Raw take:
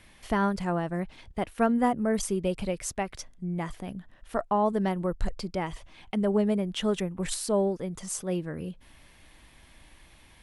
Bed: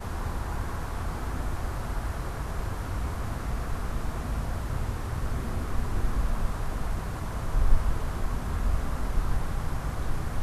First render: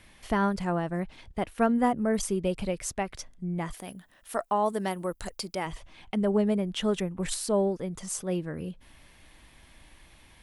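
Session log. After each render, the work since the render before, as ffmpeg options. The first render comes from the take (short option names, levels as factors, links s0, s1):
-filter_complex "[0:a]asplit=3[s0][s1][s2];[s0]afade=t=out:st=3.72:d=0.02[s3];[s1]aemphasis=mode=production:type=bsi,afade=t=in:st=3.72:d=0.02,afade=t=out:st=5.65:d=0.02[s4];[s2]afade=t=in:st=5.65:d=0.02[s5];[s3][s4][s5]amix=inputs=3:normalize=0"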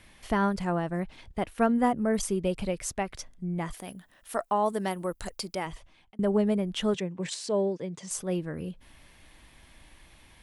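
-filter_complex "[0:a]asettb=1/sr,asplit=3[s0][s1][s2];[s0]atrim=end=6.944[s3];[s1]atrim=start=6.94:end=8.11,asetpts=PTS-STARTPTS,afade=t=in:d=0.004:c=qsin,afade=t=out:st=1.166:d=0.004:c=qsin,highpass=f=130:w=0.5412,highpass=f=130:w=1.3066,equalizer=f=230:t=q:w=4:g=-7,equalizer=f=760:t=q:w=4:g=-5,equalizer=f=1300:t=q:w=4:g=-9,lowpass=f=7500:w=0.5412,lowpass=f=7500:w=1.3066[s4];[s2]atrim=start=8.106[s5];[s3][s4]acrossfade=d=0.004:c1=hsin:c2=qsin[s6];[s6][s5]acrossfade=d=0.004:c1=qsin:c2=hsin,asplit=2[s7][s8];[s7]atrim=end=6.19,asetpts=PTS-STARTPTS,afade=t=out:st=5.56:d=0.63[s9];[s8]atrim=start=6.19,asetpts=PTS-STARTPTS,afade=t=in:d=0.004:c=hsin[s10];[s9][s10]concat=n=2:v=0:a=1"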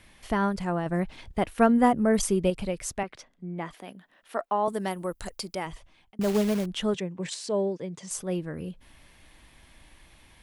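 -filter_complex "[0:a]asettb=1/sr,asplit=3[s0][s1][s2];[s0]atrim=end=3.034[s3];[s1]atrim=start=3.03:end=4.68,asetpts=PTS-STARTPTS,afade=t=in:d=0.004:c=qsin,afade=t=out:st=1.646:d=0.004:c=qsin,acrossover=split=170 4400:gain=0.126 1 0.224[s4][s5][s6];[s4][s5][s6]amix=inputs=3:normalize=0[s7];[s2]atrim=start=4.676[s8];[s3][s7]acrossfade=d=0.004:c1=hsin:c2=qsin[s9];[s9][s8]acrossfade=d=0.004:c1=qsin:c2=hsin,asettb=1/sr,asplit=3[s10][s11][s12];[s10]atrim=end=6.214[s13];[s11]atrim=start=6.21:end=6.66,asetpts=PTS-STARTPTS,afade=t=in:d=0.004:c=qsin,afade=t=out:st=0.446:d=0.004:c=qsin,acrusher=bits=3:mode=log:mix=0:aa=0.000001[s14];[s12]atrim=start=6.656[s15];[s13][s14]acrossfade=d=0.004:c1=hsin:c2=qsin[s16];[s16][s15]acrossfade=d=0.004:c1=qsin:c2=hsin,asplit=3[s17][s18][s19];[s17]atrim=end=0.862[s20];[s18]atrim=start=0.858:end=2.502,asetpts=PTS-STARTPTS,volume=1.58[s21];[s19]atrim=start=2.498[s22];[s20][s21]acrossfade=d=0.004:c1=hsin:c2=hsin[s23];[s23][s22]acrossfade=d=0.004:c1=hsin:c2=hsin"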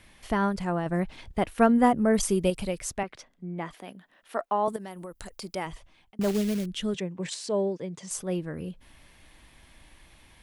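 -filter_complex "[0:a]asettb=1/sr,asplit=3[s0][s1][s2];[s0]atrim=end=2.294[s3];[s1]atrim=start=2.29:end=2.79,asetpts=PTS-STARTPTS,afade=t=in:d=0.004:c=qsin,afade=t=out:st=0.496:d=0.004:c=qsin,aemphasis=mode=production:type=cd[s4];[s2]atrim=start=2.786[s5];[s3][s4]acrossfade=d=0.004:c1=hsin:c2=qsin[s6];[s6][s5]acrossfade=d=0.004:c1=qsin:c2=hsin,asettb=1/sr,asplit=3[s7][s8][s9];[s7]atrim=end=4.764[s10];[s8]atrim=start=4.76:end=5.42,asetpts=PTS-STARTPTS,afade=t=in:d=0.004:c=qsin,afade=t=out:st=0.656:d=0.004:c=qsin,acompressor=threshold=0.0141:ratio=5:attack=3.2:release=140:knee=1:detection=peak[s11];[s9]atrim=start=5.416[s12];[s10][s11]acrossfade=d=0.004:c1=hsin:c2=qsin[s13];[s13][s12]acrossfade=d=0.004:c1=qsin:c2=hsin,asettb=1/sr,asplit=3[s14][s15][s16];[s14]atrim=end=6.314[s17];[s15]atrim=start=6.31:end=6.95,asetpts=PTS-STARTPTS,afade=t=in:d=0.004:c=qsin,afade=t=out:st=0.636:d=0.004:c=qsin,equalizer=f=870:t=o:w=1.5:g=-12.5[s18];[s16]atrim=start=6.946[s19];[s17][s18]acrossfade=d=0.004:c1=hsin:c2=qsin[s20];[s20][s19]acrossfade=d=0.004:c1=qsin:c2=hsin"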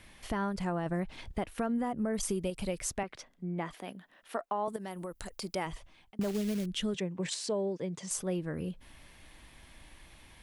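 -af "alimiter=limit=0.112:level=0:latency=1:release=283,acompressor=threshold=0.0316:ratio=3"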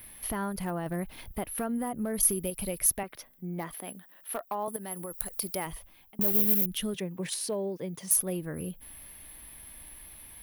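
-af "asoftclip=type=hard:threshold=0.0596,aexciter=amount=15.1:drive=9.2:freq=11000"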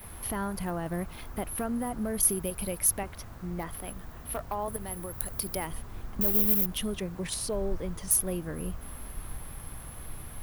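-filter_complex "[1:a]volume=0.224[s0];[0:a][s0]amix=inputs=2:normalize=0"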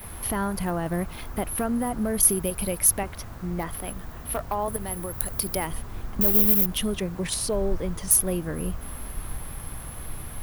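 -af "volume=1.88,alimiter=limit=0.891:level=0:latency=1"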